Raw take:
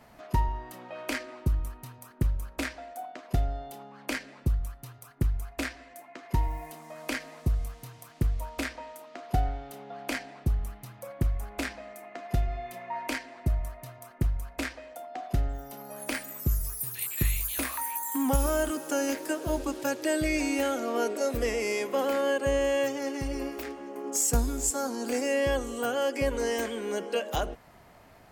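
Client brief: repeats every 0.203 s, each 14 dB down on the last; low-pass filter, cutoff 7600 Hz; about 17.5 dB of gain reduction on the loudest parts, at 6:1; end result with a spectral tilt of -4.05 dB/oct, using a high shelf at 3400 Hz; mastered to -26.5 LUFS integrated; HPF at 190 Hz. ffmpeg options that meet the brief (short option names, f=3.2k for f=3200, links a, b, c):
-af "highpass=190,lowpass=7.6k,highshelf=f=3.4k:g=-4.5,acompressor=threshold=-44dB:ratio=6,aecho=1:1:203|406:0.2|0.0399,volume=21dB"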